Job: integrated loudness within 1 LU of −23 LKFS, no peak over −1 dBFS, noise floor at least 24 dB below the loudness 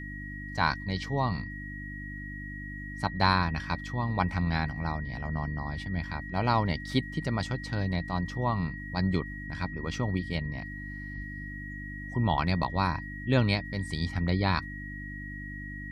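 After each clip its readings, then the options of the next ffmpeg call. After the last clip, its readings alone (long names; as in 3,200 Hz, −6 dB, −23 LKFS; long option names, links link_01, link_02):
mains hum 50 Hz; hum harmonics up to 300 Hz; level of the hum −39 dBFS; interfering tone 1,900 Hz; level of the tone −41 dBFS; integrated loudness −31.5 LKFS; sample peak −9.0 dBFS; target loudness −23.0 LKFS
→ -af "bandreject=frequency=50:width_type=h:width=4,bandreject=frequency=100:width_type=h:width=4,bandreject=frequency=150:width_type=h:width=4,bandreject=frequency=200:width_type=h:width=4,bandreject=frequency=250:width_type=h:width=4,bandreject=frequency=300:width_type=h:width=4"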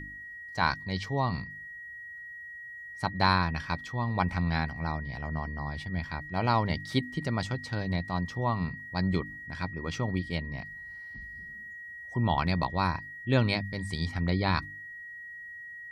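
mains hum none found; interfering tone 1,900 Hz; level of the tone −41 dBFS
→ -af "bandreject=frequency=1900:width=30"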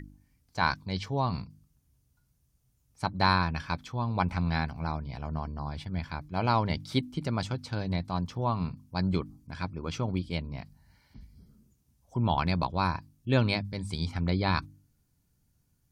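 interfering tone none found; integrated loudness −31.0 LKFS; sample peak −10.0 dBFS; target loudness −23.0 LKFS
→ -af "volume=8dB"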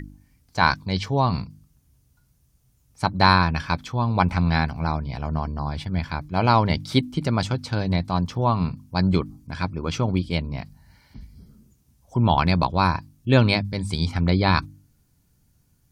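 integrated loudness −23.0 LKFS; sample peak −2.0 dBFS; background noise floor −64 dBFS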